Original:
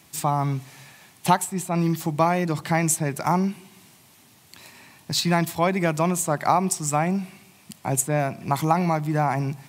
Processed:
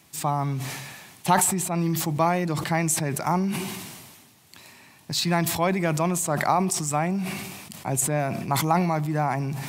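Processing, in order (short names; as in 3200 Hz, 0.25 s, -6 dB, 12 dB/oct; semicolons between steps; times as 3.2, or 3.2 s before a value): sustainer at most 37 dB/s; gain -2.5 dB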